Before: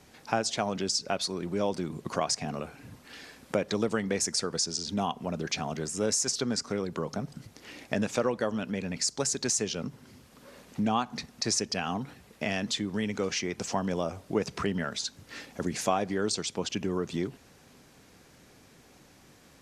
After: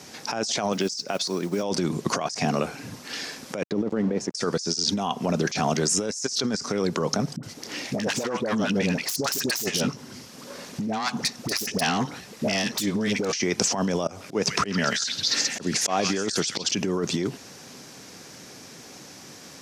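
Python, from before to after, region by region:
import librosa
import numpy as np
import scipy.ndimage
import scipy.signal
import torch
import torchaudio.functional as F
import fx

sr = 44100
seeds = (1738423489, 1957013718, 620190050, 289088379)

y = fx.chain(x, sr, fx.highpass(hz=120.0, slope=12),
    fx.mod_noise(seeds[0], snr_db=27),
    fx.upward_expand(threshold_db=-43.0, expansion=1.5), at=(0.72, 1.63))
y = fx.chain(y, sr, fx.sample_gate(floor_db=-37.0),
    fx.bandpass_q(hz=250.0, q=0.65), at=(3.63, 4.35))
y = fx.chain(y, sr, fx.self_delay(depth_ms=0.21),
    fx.dispersion(late='highs', ms=71.0, hz=730.0), at=(7.36, 13.33))
y = fx.chain(y, sr, fx.echo_stepped(ms=134, hz=2300.0, octaves=0.7, feedback_pct=70, wet_db=-1.5),
    fx.auto_swell(attack_ms=191.0), at=(14.07, 16.71))
y = scipy.signal.sosfilt(scipy.signal.butter(2, 130.0, 'highpass', fs=sr, output='sos'), y)
y = fx.peak_eq(y, sr, hz=5600.0, db=8.5, octaves=0.75)
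y = fx.over_compress(y, sr, threshold_db=-33.0, ratio=-1.0)
y = y * librosa.db_to_amplitude(7.5)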